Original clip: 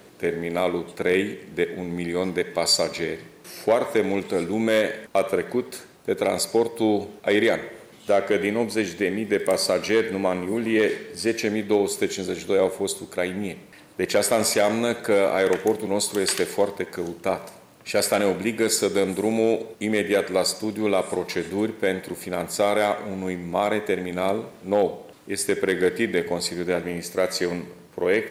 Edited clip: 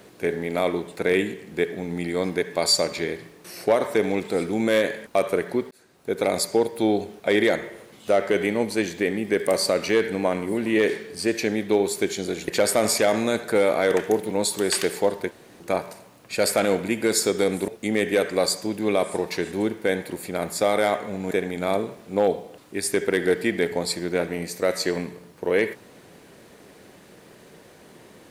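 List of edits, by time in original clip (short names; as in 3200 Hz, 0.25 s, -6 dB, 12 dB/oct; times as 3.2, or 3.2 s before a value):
5.71–6.21 fade in
12.48–14.04 cut
16.87–17.16 room tone
19.24–19.66 cut
23.29–23.86 cut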